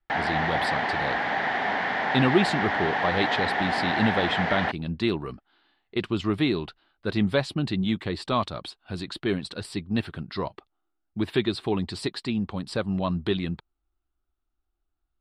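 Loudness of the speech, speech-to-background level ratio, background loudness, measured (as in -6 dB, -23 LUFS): -28.5 LUFS, -2.5 dB, -26.0 LUFS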